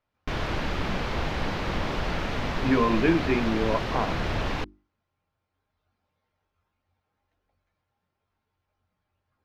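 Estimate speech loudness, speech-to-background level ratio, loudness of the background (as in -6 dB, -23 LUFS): -26.0 LUFS, 4.0 dB, -30.0 LUFS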